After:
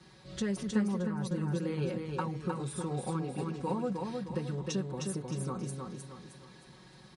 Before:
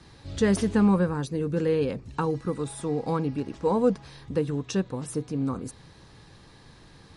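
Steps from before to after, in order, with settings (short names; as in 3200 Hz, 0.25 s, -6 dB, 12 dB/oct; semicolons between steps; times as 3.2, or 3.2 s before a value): HPF 76 Hz; comb 5.4 ms, depth 96%; compressor 6:1, threshold -23 dBFS, peak gain reduction 11 dB; feedback echo 0.31 s, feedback 41%, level -4 dB; 0.63–1.31 three-band expander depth 100%; gain -7 dB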